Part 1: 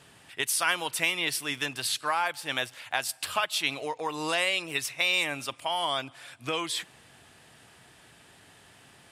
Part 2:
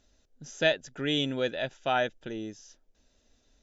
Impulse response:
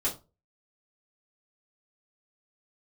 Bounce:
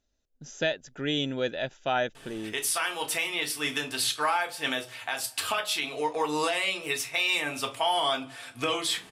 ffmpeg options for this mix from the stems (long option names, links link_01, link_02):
-filter_complex "[0:a]adelay=2150,volume=0.5dB,asplit=2[link_01][link_02];[link_02]volume=-5.5dB[link_03];[1:a]agate=range=-12dB:threshold=-58dB:ratio=16:detection=peak,volume=0.5dB[link_04];[2:a]atrim=start_sample=2205[link_05];[link_03][link_05]afir=irnorm=-1:irlink=0[link_06];[link_01][link_04][link_06]amix=inputs=3:normalize=0,alimiter=limit=-16dB:level=0:latency=1:release=439"